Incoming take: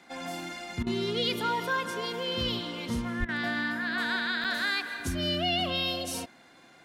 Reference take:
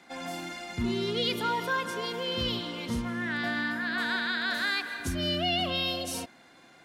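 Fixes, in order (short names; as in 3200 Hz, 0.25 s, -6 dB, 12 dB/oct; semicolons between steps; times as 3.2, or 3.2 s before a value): 3.19–3.31 HPF 140 Hz 24 dB/oct; interpolate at 4.44, 6.6 ms; interpolate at 0.83/3.25, 35 ms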